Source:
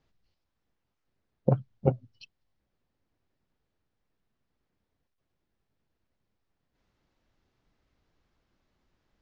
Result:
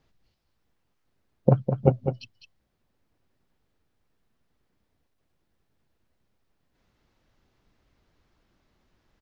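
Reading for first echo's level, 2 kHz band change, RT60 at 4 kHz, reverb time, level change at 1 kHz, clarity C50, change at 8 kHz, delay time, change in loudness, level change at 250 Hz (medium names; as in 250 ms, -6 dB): -8.0 dB, +5.5 dB, no reverb, no reverb, +5.5 dB, no reverb, no reading, 204 ms, +4.5 dB, +5.5 dB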